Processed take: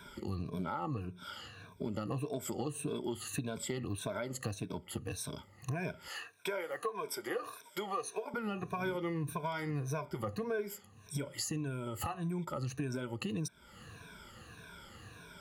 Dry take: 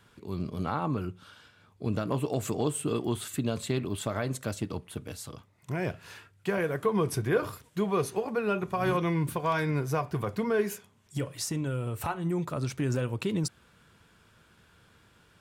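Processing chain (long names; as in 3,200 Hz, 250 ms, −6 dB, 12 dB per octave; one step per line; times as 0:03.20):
rippled gain that drifts along the octave scale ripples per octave 1.6, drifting −1.7 Hz, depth 18 dB
0:06.08–0:08.34: high-pass filter 500 Hz 12 dB per octave
downward compressor 4 to 1, threshold −42 dBFS, peak gain reduction 21 dB
level +4.5 dB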